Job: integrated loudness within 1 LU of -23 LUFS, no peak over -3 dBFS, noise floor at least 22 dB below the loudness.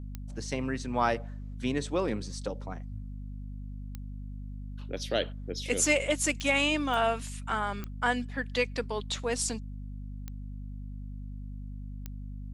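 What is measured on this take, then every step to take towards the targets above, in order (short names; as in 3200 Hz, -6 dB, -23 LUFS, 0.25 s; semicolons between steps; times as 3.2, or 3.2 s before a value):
clicks 7; hum 50 Hz; harmonics up to 250 Hz; hum level -37 dBFS; loudness -30.5 LUFS; peak -11.5 dBFS; loudness target -23.0 LUFS
-> de-click; notches 50/100/150/200/250 Hz; gain +7.5 dB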